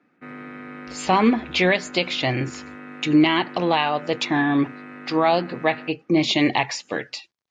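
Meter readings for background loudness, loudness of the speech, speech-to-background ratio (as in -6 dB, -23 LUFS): -39.0 LUFS, -21.5 LUFS, 17.5 dB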